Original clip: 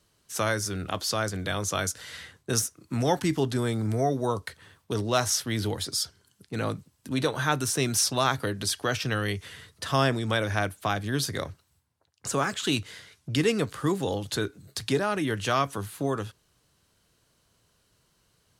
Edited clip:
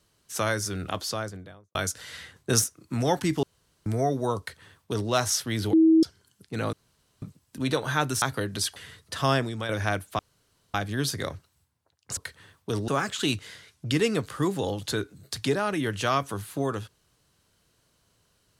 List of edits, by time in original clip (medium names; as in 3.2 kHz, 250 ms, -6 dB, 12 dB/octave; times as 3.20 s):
0.89–1.75 s: studio fade out
2.36–2.64 s: gain +3.5 dB
3.43–3.86 s: room tone
4.39–5.10 s: copy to 12.32 s
5.73–6.03 s: bleep 322 Hz -14 dBFS
6.73 s: insert room tone 0.49 s
7.73–8.28 s: delete
8.82–9.46 s: delete
10.02–10.39 s: fade out, to -8 dB
10.89 s: insert room tone 0.55 s